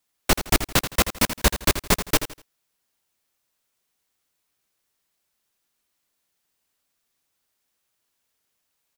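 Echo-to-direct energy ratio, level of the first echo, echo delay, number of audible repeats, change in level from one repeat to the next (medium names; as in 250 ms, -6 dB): -10.5 dB, -11.0 dB, 82 ms, 3, -11.0 dB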